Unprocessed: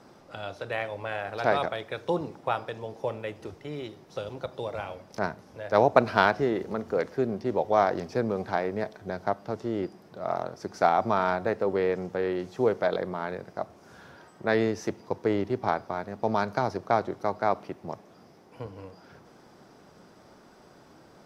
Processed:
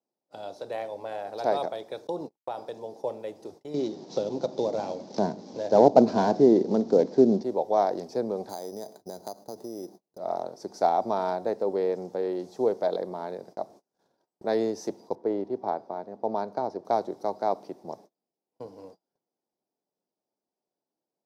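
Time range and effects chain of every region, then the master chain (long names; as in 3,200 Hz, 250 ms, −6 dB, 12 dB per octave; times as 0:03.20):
0:02.07–0:02.58: noise gate −36 dBFS, range −36 dB + downward compressor 2.5 to 1, threshold −27 dBFS
0:03.74–0:07.43: variable-slope delta modulation 32 kbit/s + parametric band 220 Hz +14 dB 2.3 octaves + one half of a high-frequency compander encoder only
0:08.49–0:10.18: low-pass filter 1,900 Hz 6 dB per octave + downward compressor 5 to 1, threshold −31 dBFS + bad sample-rate conversion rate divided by 8×, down none, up hold
0:15.15–0:16.85: low-pass filter 1,600 Hz 6 dB per octave + low-shelf EQ 140 Hz −6 dB + one half of a high-frequency compander decoder only
whole clip: high-pass filter 240 Hz 12 dB per octave; noise gate −47 dBFS, range −34 dB; flat-topped bell 1,900 Hz −12.5 dB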